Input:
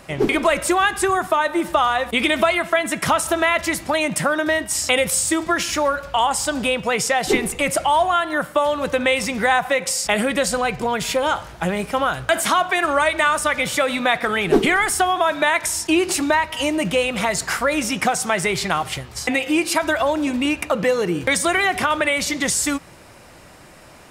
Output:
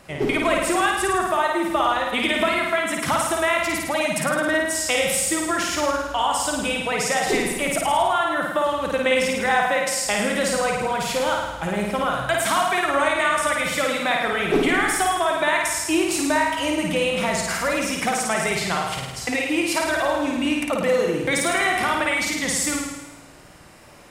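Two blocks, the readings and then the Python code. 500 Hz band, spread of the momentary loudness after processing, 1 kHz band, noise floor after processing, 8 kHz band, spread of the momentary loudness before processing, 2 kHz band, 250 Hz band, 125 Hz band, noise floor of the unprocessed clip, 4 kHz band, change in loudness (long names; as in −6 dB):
−2.0 dB, 3 LU, −2.0 dB, −36 dBFS, −2.0 dB, 4 LU, −2.0 dB, −2.0 dB, −2.0 dB, −45 dBFS, −2.0 dB, −2.0 dB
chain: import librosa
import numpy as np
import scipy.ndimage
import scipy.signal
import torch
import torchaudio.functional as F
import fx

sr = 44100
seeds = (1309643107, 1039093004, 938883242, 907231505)

y = fx.room_flutter(x, sr, wall_m=9.2, rt60_s=1.1)
y = fx.wow_flutter(y, sr, seeds[0], rate_hz=2.1, depth_cents=20.0)
y = F.gain(torch.from_numpy(y), -5.0).numpy()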